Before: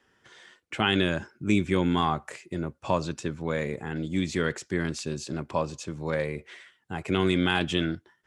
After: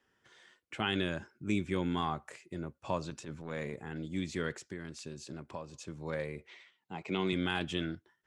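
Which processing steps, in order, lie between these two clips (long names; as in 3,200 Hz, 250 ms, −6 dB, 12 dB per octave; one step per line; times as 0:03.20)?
0:03.10–0:03.74: transient designer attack −11 dB, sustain +3 dB
0:04.65–0:05.74: downward compressor 3 to 1, threshold −32 dBFS, peak gain reduction 8.5 dB
0:06.47–0:07.33: loudspeaker in its box 170–6,700 Hz, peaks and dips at 180 Hz +4 dB, 900 Hz +5 dB, 1,600 Hz −8 dB, 2,300 Hz +5 dB, 4,000 Hz +4 dB
level −8.5 dB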